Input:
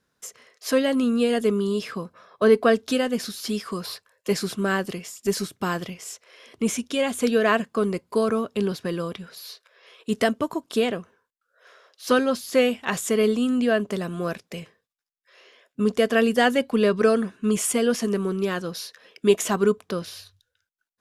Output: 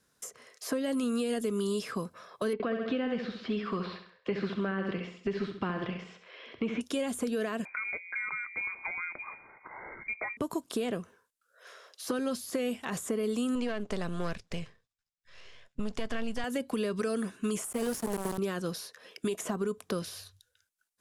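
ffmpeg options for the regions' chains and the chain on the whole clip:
ffmpeg -i in.wav -filter_complex "[0:a]asettb=1/sr,asplit=3[link_01][link_02][link_03];[link_01]atrim=end=2.534[link_04];[link_02]atrim=start=2.53:end=6.81,asetpts=PTS-STARTPTS,afade=type=in:duration=0.004:curve=qsin,afade=type=out:start_time=4.276:duration=0.004:curve=qsin,acrossover=split=2700[link_05][link_06];[link_06]acompressor=threshold=-46dB:ratio=4:attack=1:release=60[link_07];[link_05][link_07]amix=inputs=2:normalize=0,lowpass=frequency=3500:width=0.5412,lowpass=frequency=3500:width=1.3066,aecho=1:1:67|134|201|268|335:0.376|0.158|0.0663|0.0278|0.0117,atrim=end_sample=188748[link_08];[link_03]atrim=start=6.806[link_09];[link_04][link_08]acrossfade=duration=0.004:curve1=hsin:curve2=qsin[link_10];[link_10][link_09]acrossfade=duration=0.004:curve1=qsin:curve2=hsin,asettb=1/sr,asplit=3[link_11][link_12][link_13];[link_11]atrim=end=7.654[link_14];[link_12]atrim=start=7.65:end=10.37,asetpts=PTS-STARTPTS,afade=type=in:duration=0.004:curve=qsin,afade=type=out:start_time=2.716:duration=0.004:curve=qsin,bandreject=frequency=58.13:width_type=h:width=4,bandreject=frequency=116.26:width_type=h:width=4,bandreject=frequency=174.39:width_type=h:width=4,bandreject=frequency=232.52:width_type=h:width=4,bandreject=frequency=290.65:width_type=h:width=4,bandreject=frequency=348.78:width_type=h:width=4,bandreject=frequency=406.91:width_type=h:width=4,bandreject=frequency=465.04:width_type=h:width=4,bandreject=frequency=523.17:width_type=h:width=4,bandreject=frequency=581.3:width_type=h:width=4,bandreject=frequency=639.43:width_type=h:width=4,bandreject=frequency=697.56:width_type=h:width=4,bandreject=frequency=755.69:width_type=h:width=4,bandreject=frequency=813.82:width_type=h:width=4,acompressor=mode=upward:threshold=-30dB:ratio=2.5:attack=3.2:release=140:knee=2.83:detection=peak,lowpass=frequency=2200:width_type=q:width=0.5098,lowpass=frequency=2200:width_type=q:width=0.6013,lowpass=frequency=2200:width_type=q:width=0.9,lowpass=frequency=2200:width_type=q:width=2.563,afreqshift=-2600[link_15];[link_13]atrim=start=10.366[link_16];[link_14][link_15]acrossfade=duration=0.004:curve1=hsin:curve2=qsin[link_17];[link_17][link_16]acrossfade=duration=0.004:curve1=qsin:curve2=hsin,asettb=1/sr,asplit=3[link_18][link_19][link_20];[link_18]atrim=end=13.554[link_21];[link_19]atrim=start=13.55:end=16.44,asetpts=PTS-STARTPTS,afade=type=in:duration=0.004:curve=qsin,afade=type=out:start_time=2.886:duration=0.004:curve=qsin,aeval=exprs='if(lt(val(0),0),0.447*val(0),val(0))':channel_layout=same,asubboost=boost=10.5:cutoff=140,lowpass=5500[link_22];[link_20]atrim=start=16.436[link_23];[link_21][link_22]acrossfade=duration=0.004:curve1=hsin:curve2=qsin[link_24];[link_24][link_23]acrossfade=duration=0.004:curve1=qsin:curve2=hsin,asettb=1/sr,asplit=3[link_25][link_26][link_27];[link_25]atrim=end=17.644[link_28];[link_26]atrim=start=17.64:end=18.38,asetpts=PTS-STARTPTS,afade=type=in:duration=0.004:curve=qsin,afade=type=out:start_time=0.736:duration=0.004:curve=qsin,aemphasis=mode=production:type=75fm,aeval=exprs='val(0)*gte(abs(val(0)),0.075)':channel_layout=same[link_29];[link_27]atrim=start=18.376[link_30];[link_28][link_29]acrossfade=duration=0.004:curve1=hsin:curve2=qsin[link_31];[link_31][link_30]acrossfade=duration=0.004:curve1=qsin:curve2=hsin,alimiter=limit=-16.5dB:level=0:latency=1:release=115,equalizer=frequency=9500:width_type=o:width=1.4:gain=9,acrossover=split=420|1600[link_32][link_33][link_34];[link_32]acompressor=threshold=-32dB:ratio=4[link_35];[link_33]acompressor=threshold=-37dB:ratio=4[link_36];[link_34]acompressor=threshold=-43dB:ratio=4[link_37];[link_35][link_36][link_37]amix=inputs=3:normalize=0" out.wav

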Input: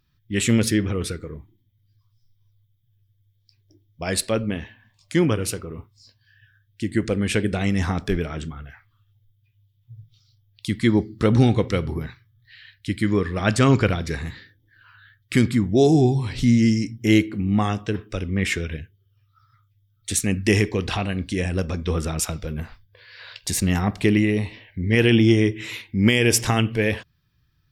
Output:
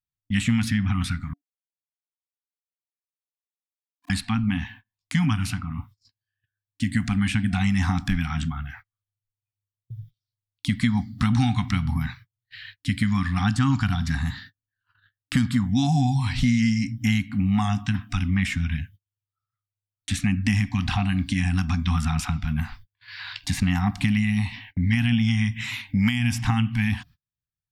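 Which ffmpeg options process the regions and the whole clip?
ffmpeg -i in.wav -filter_complex "[0:a]asettb=1/sr,asplit=3[link_01][link_02][link_03];[link_01]atrim=end=1.334[link_04];[link_02]atrim=start=1.33:end=4.1,asetpts=PTS-STARTPTS,afade=type=in:duration=0.004:curve=qsin,afade=type=out:start_time=2.766:duration=0.004:curve=qsin,asuperpass=centerf=330:order=8:qfactor=4.1,aeval=exprs='val(0)*gte(abs(val(0)),0.00891)':channel_layout=same[link_05];[link_03]atrim=start=4.096[link_06];[link_04][link_05]acrossfade=duration=0.004:curve1=hsin:curve2=qsin[link_07];[link_07][link_06]acrossfade=duration=0.004:curve1=qsin:curve2=hsin,asettb=1/sr,asplit=3[link_08][link_09][link_10];[link_08]atrim=end=13.444[link_11];[link_09]atrim=start=13.44:end=15.67,asetpts=PTS-STARTPTS,afade=type=in:duration=0.004:curve=qsin,afade=type=out:start_time=2.226:duration=0.004:curve=qsin,equalizer=frequency=2200:width=4.8:gain=-8.5,bandreject=frequency=2500:width=20[link_12];[link_10]atrim=start=15.666[link_13];[link_11][link_12]acrossfade=duration=0.004:curve1=hsin:curve2=qsin[link_14];[link_14][link_13]acrossfade=duration=0.004:curve1=qsin:curve2=hsin,afftfilt=real='re*(1-between(b*sr/4096,290,700))':imag='im*(1-between(b*sr/4096,290,700))':win_size=4096:overlap=0.75,agate=range=-35dB:threshold=-48dB:ratio=16:detection=peak,acrossover=split=600|3500[link_15][link_16][link_17];[link_15]acompressor=threshold=-25dB:ratio=4[link_18];[link_16]acompressor=threshold=-36dB:ratio=4[link_19];[link_17]acompressor=threshold=-46dB:ratio=4[link_20];[link_18][link_19][link_20]amix=inputs=3:normalize=0,volume=5.5dB" out.wav

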